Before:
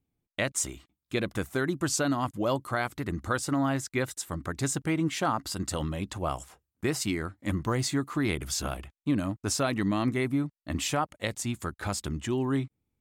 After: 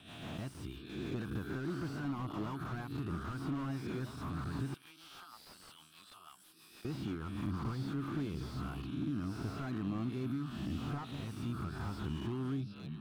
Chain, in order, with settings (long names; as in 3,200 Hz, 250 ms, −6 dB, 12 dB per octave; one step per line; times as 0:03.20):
peak hold with a rise ahead of every peak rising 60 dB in 0.87 s
high-pass filter 62 Hz
phaser with its sweep stopped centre 2,000 Hz, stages 6
echo through a band-pass that steps 789 ms, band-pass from 170 Hz, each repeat 1.4 octaves, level −8.5 dB
rotating-speaker cabinet horn 6.3 Hz, later 1.2 Hz, at 0:07.99
downward compressor 2.5 to 1, threshold −40 dBFS, peak gain reduction 10.5 dB
0:04.74–0:06.85: first difference
slew-rate limiting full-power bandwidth 6.1 Hz
level +2.5 dB